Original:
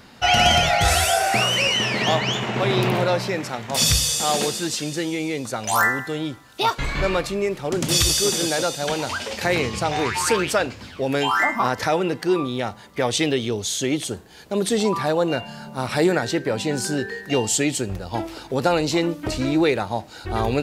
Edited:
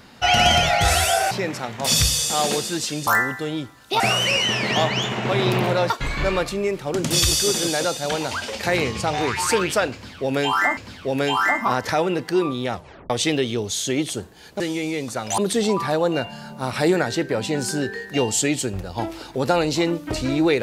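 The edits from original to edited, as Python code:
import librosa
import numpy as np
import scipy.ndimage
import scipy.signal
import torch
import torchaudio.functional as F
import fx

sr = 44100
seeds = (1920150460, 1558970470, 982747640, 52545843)

y = fx.edit(x, sr, fx.move(start_s=1.31, length_s=1.9, to_s=6.68),
    fx.move(start_s=4.97, length_s=0.78, to_s=14.54),
    fx.repeat(start_s=10.71, length_s=0.84, count=2),
    fx.tape_stop(start_s=12.67, length_s=0.37), tone=tone)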